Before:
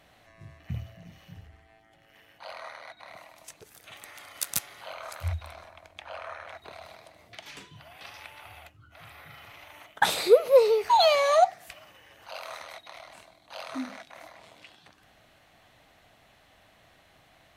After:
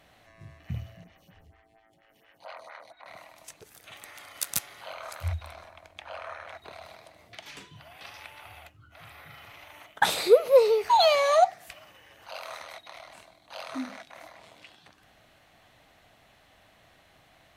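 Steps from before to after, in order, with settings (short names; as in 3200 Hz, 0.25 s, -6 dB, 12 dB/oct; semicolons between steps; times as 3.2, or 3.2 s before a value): 1.04–3.06 photocell phaser 4.3 Hz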